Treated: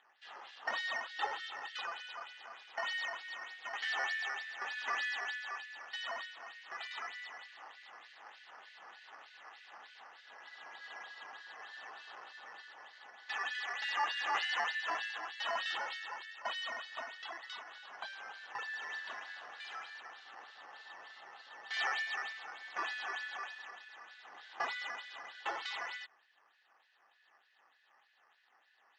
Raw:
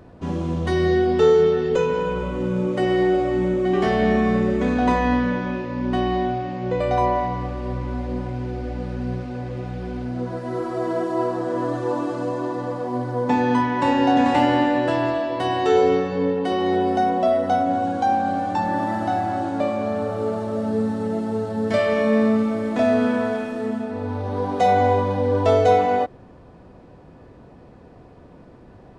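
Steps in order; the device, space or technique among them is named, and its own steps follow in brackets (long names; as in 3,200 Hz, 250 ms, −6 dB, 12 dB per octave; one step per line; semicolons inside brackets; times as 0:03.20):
Butterworth high-pass 1,700 Hz 72 dB per octave
circuit-bent sampling toy (sample-and-hold swept by an LFO 8×, swing 100% 3.3 Hz; loudspeaker in its box 540–4,400 Hz, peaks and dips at 810 Hz +10 dB, 1,200 Hz +6 dB, 2,300 Hz −10 dB)
0:18.77–0:19.96: flutter between parallel walls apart 7.9 metres, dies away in 0.26 s
level −1 dB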